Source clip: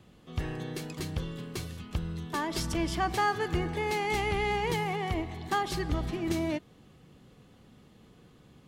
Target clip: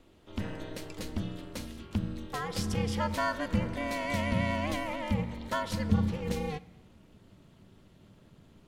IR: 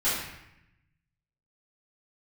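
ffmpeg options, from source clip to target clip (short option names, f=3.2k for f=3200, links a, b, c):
-filter_complex "[0:a]asubboost=boost=6:cutoff=60,aeval=exprs='val(0)*sin(2*PI*150*n/s)':c=same,asplit=2[a][b];[1:a]atrim=start_sample=2205[c];[b][c]afir=irnorm=-1:irlink=0,volume=-27.5dB[d];[a][d]amix=inputs=2:normalize=0"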